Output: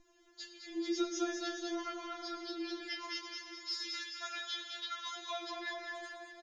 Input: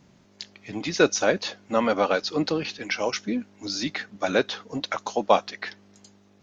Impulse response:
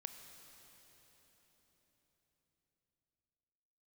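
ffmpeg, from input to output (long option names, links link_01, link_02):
-filter_complex "[0:a]aecho=1:1:6.4:0.51,aecho=1:1:208|416|624|832|1040:0.447|0.197|0.0865|0.0381|0.0167,flanger=delay=19:depth=5.4:speed=0.68,asettb=1/sr,asplit=3[link_01][link_02][link_03];[link_01]atrim=end=2.874[link_04];[link_02]atrim=start=2.87:end=5.43,asetpts=PTS-STARTPTS,afade=type=in:duration=0.004:curve=qsin,afade=type=out:start_time=2.556:duration=0.004:curve=qsin,highpass=1200[link_05];[link_03]atrim=start=5.426[link_06];[link_04][link_05]acrossfade=duration=0.004:curve1=hsin:curve2=qsin[link_07];[link_07][link_06]acrossfade=duration=0.004:curve1=qsin:curve2=hsin,acompressor=threshold=-33dB:ratio=2.5[link_08];[1:a]atrim=start_sample=2205,asetrate=57330,aresample=44100[link_09];[link_08][link_09]afir=irnorm=-1:irlink=0,aeval=exprs='val(0)+0.00112*(sin(2*PI*60*n/s)+sin(2*PI*2*60*n/s)/2+sin(2*PI*3*60*n/s)/3+sin(2*PI*4*60*n/s)/4+sin(2*PI*5*60*n/s)/5)':channel_layout=same,afftfilt=real='re*4*eq(mod(b,16),0)':imag='im*4*eq(mod(b,16),0)':win_size=2048:overlap=0.75,volume=5dB"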